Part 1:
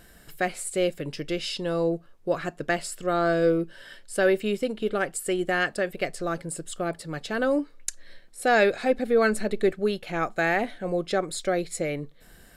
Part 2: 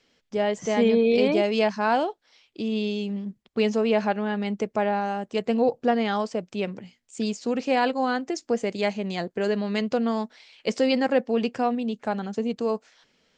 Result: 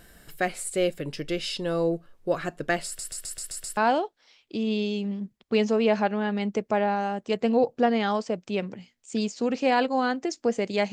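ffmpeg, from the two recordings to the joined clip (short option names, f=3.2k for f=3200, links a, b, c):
-filter_complex "[0:a]apad=whole_dur=10.92,atrim=end=10.92,asplit=7[a][b][c][d][e][f][g];[a]atrim=end=2.992[h];[b]atrim=start=2.858:end=2.992[i];[c]atrim=start=2.858:end=2.992[j];[d]atrim=start=2.858:end=2.992[k];[e]atrim=start=2.858:end=2.992[l];[f]atrim=start=2.858:end=2.992[m];[g]atrim=start=2.858:end=2.992[n];[1:a]atrim=start=1.818:end=8.97[o];[h][i]acrossfade=d=0.004:c1=hsin:c2=hsin[p];[p][j]acrossfade=d=0.004:c1=hsin:c2=hsin[q];[q][k]acrossfade=d=0.004:c1=hsin:c2=hsin[r];[r][l]acrossfade=d=0.004:c1=hsin:c2=hsin[s];[s][m]acrossfade=d=0.004:c1=hsin:c2=hsin[t];[t][n]acrossfade=d=0.004:c1=hsin:c2=hsin[u];[u][o]acrossfade=d=0.004:c1=hsin:c2=hsin"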